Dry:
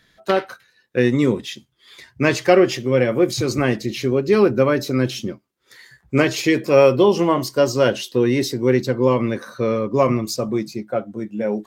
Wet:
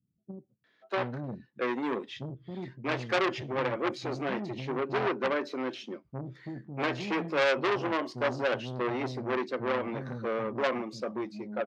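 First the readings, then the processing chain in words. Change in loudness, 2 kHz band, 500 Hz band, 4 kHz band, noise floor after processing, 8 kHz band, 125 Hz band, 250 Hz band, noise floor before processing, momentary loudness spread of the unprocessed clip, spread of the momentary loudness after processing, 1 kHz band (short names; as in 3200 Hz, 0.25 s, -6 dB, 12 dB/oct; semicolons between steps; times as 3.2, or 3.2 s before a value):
-13.0 dB, -7.5 dB, -14.0 dB, -11.0 dB, -72 dBFS, under -20 dB, -15.5 dB, -15.0 dB, -63 dBFS, 11 LU, 13 LU, -7.5 dB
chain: BPF 130–3000 Hz; bands offset in time lows, highs 0.64 s, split 230 Hz; core saturation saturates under 2300 Hz; gain -8 dB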